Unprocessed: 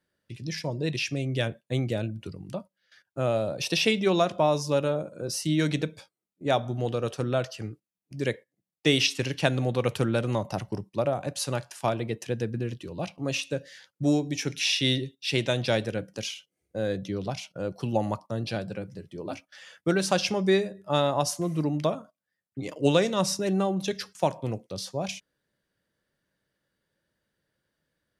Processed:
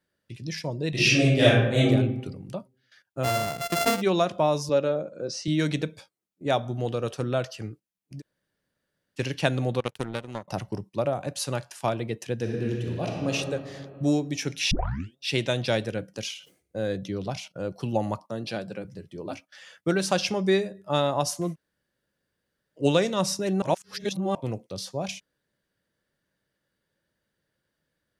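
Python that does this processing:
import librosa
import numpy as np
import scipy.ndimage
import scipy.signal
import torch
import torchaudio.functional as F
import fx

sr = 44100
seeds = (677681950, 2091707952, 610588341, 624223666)

y = fx.reverb_throw(x, sr, start_s=0.9, length_s=0.98, rt60_s=0.92, drr_db=-11.0)
y = fx.sample_sort(y, sr, block=64, at=(3.23, 4.0), fade=0.02)
y = fx.cabinet(y, sr, low_hz=160.0, low_slope=12, high_hz=6200.0, hz=(530.0, 960.0, 3000.0), db=(4, -5, -4), at=(4.69, 5.48))
y = fx.power_curve(y, sr, exponent=2.0, at=(9.8, 10.48))
y = fx.reverb_throw(y, sr, start_s=12.35, length_s=0.97, rt60_s=2.3, drr_db=-1.0)
y = fx.sustainer(y, sr, db_per_s=130.0, at=(16.28, 17.48))
y = fx.highpass(y, sr, hz=160.0, slope=12, at=(18.22, 18.85))
y = fx.edit(y, sr, fx.room_tone_fill(start_s=8.2, length_s=0.98, crossfade_s=0.04),
    fx.tape_start(start_s=14.71, length_s=0.46),
    fx.room_tone_fill(start_s=21.53, length_s=1.26, crossfade_s=0.06),
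    fx.reverse_span(start_s=23.62, length_s=0.73), tone=tone)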